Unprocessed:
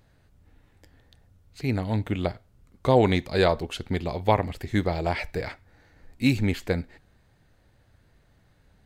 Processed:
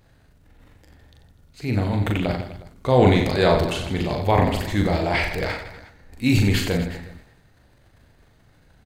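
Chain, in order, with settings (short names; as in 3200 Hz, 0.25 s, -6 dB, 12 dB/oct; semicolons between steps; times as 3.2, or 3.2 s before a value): transient shaper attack -3 dB, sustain +10 dB; reverse bouncing-ball echo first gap 40 ms, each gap 1.3×, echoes 5; gain +2 dB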